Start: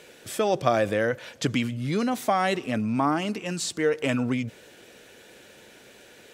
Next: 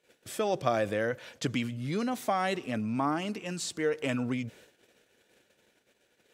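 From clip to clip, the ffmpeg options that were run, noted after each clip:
-af "agate=range=-20dB:threshold=-48dB:ratio=16:detection=peak,volume=-5.5dB"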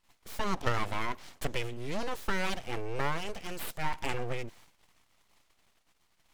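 -af "aeval=exprs='abs(val(0))':c=same"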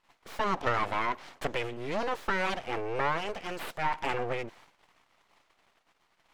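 -filter_complex "[0:a]asplit=2[a][b];[b]highpass=f=720:p=1,volume=15dB,asoftclip=type=tanh:threshold=-13dB[c];[a][c]amix=inputs=2:normalize=0,lowpass=f=1.3k:p=1,volume=-6dB"

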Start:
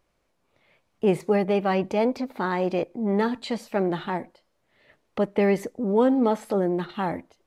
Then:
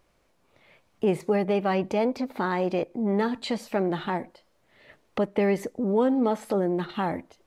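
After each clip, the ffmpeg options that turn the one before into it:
-af "acompressor=threshold=-38dB:ratio=1.5,volume=5dB"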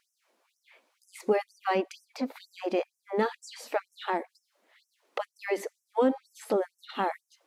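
-af "afftfilt=real='re*gte(b*sr/1024,200*pow(5400/200,0.5+0.5*sin(2*PI*2.1*pts/sr)))':imag='im*gte(b*sr/1024,200*pow(5400/200,0.5+0.5*sin(2*PI*2.1*pts/sr)))':win_size=1024:overlap=0.75"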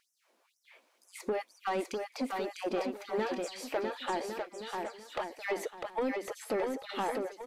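-filter_complex "[0:a]acompressor=threshold=-26dB:ratio=6,asoftclip=type=tanh:threshold=-25dB,asplit=2[a][b];[b]aecho=0:1:650|1105|1424|1646|1803:0.631|0.398|0.251|0.158|0.1[c];[a][c]amix=inputs=2:normalize=0"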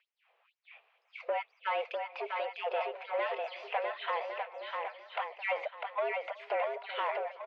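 -filter_complex "[0:a]asplit=2[a][b];[b]adelay=373,lowpass=f=1.3k:p=1,volume=-20.5dB,asplit=2[c][d];[d]adelay=373,lowpass=f=1.3k:p=1,volume=0.51,asplit=2[e][f];[f]adelay=373,lowpass=f=1.3k:p=1,volume=0.51,asplit=2[g][h];[h]adelay=373,lowpass=f=1.3k:p=1,volume=0.51[i];[a][c][e][g][i]amix=inputs=5:normalize=0,highpass=f=300:t=q:w=0.5412,highpass=f=300:t=q:w=1.307,lowpass=f=3.3k:t=q:w=0.5176,lowpass=f=3.3k:t=q:w=0.7071,lowpass=f=3.3k:t=q:w=1.932,afreqshift=150,aexciter=amount=1.2:drive=7.2:freq=2.1k"

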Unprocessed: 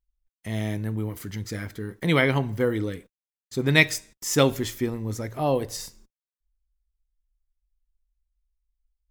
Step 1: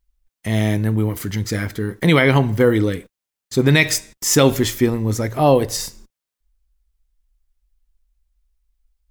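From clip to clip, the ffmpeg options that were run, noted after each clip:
-af "alimiter=level_in=12.5dB:limit=-1dB:release=50:level=0:latency=1,volume=-2.5dB"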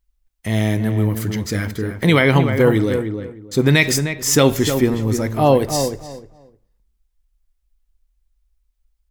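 -filter_complex "[0:a]asplit=2[a][b];[b]adelay=306,lowpass=f=1.5k:p=1,volume=-7dB,asplit=2[c][d];[d]adelay=306,lowpass=f=1.5k:p=1,volume=0.21,asplit=2[e][f];[f]adelay=306,lowpass=f=1.5k:p=1,volume=0.21[g];[a][c][e][g]amix=inputs=4:normalize=0"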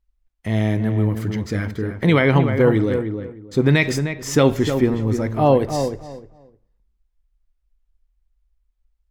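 -af "lowpass=f=2.2k:p=1,volume=-1dB"

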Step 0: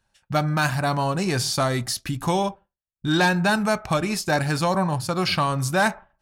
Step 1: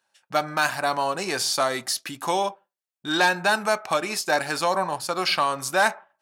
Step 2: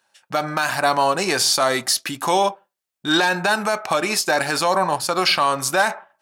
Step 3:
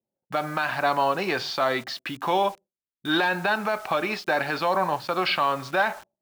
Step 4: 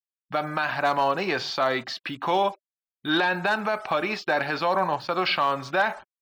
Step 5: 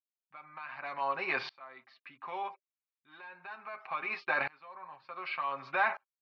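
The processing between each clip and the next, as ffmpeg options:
-af "highpass=420,volume=1dB"
-af "alimiter=level_in=13dB:limit=-1dB:release=50:level=0:latency=1,volume=-6dB"
-filter_complex "[0:a]lowpass=f=3.8k:w=0.5412,lowpass=f=3.8k:w=1.3066,acrossover=split=450[a][b];[b]acrusher=bits=6:mix=0:aa=0.000001[c];[a][c]amix=inputs=2:normalize=0,volume=-4.5dB"
-af "afftfilt=real='re*gte(hypot(re,im),0.00355)':imag='im*gte(hypot(re,im),0.00355)':win_size=1024:overlap=0.75,asoftclip=type=hard:threshold=-13.5dB"
-af "highpass=250,equalizer=f=290:t=q:w=4:g=-8,equalizer=f=450:t=q:w=4:g=-9,equalizer=f=640:t=q:w=4:g=-3,equalizer=f=1.1k:t=q:w=4:g=7,equalizer=f=2.3k:t=q:w=4:g=8,equalizer=f=3.3k:t=q:w=4:g=-8,lowpass=f=3.9k:w=0.5412,lowpass=f=3.9k:w=1.3066,aecho=1:1:7.5:0.66,aeval=exprs='val(0)*pow(10,-29*if(lt(mod(-0.67*n/s,1),2*abs(-0.67)/1000),1-mod(-0.67*n/s,1)/(2*abs(-0.67)/1000),(mod(-0.67*n/s,1)-2*abs(-0.67)/1000)/(1-2*abs(-0.67)/1000))/20)':c=same,volume=-4.5dB"

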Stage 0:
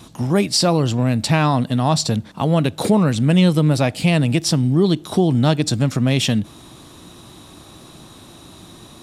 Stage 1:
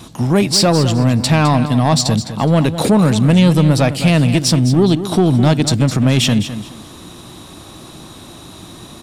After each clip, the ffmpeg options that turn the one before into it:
-filter_complex "[0:a]asoftclip=type=tanh:threshold=-10.5dB,asplit=2[a][b];[b]aecho=0:1:209|418|627:0.266|0.0665|0.0166[c];[a][c]amix=inputs=2:normalize=0,volume=5.5dB"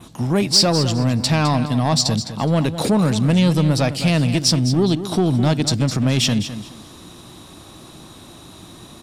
-af "adynamicequalizer=threshold=0.0224:dfrequency=5100:dqfactor=2:tfrequency=5100:tqfactor=2:attack=5:release=100:ratio=0.375:range=3.5:mode=boostabove:tftype=bell,volume=-5dB"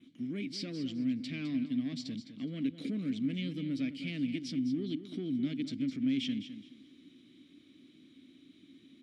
-filter_complex "[0:a]asplit=3[a][b][c];[a]bandpass=f=270:t=q:w=8,volume=0dB[d];[b]bandpass=f=2.29k:t=q:w=8,volume=-6dB[e];[c]bandpass=f=3.01k:t=q:w=8,volume=-9dB[f];[d][e][f]amix=inputs=3:normalize=0,volume=-6dB"

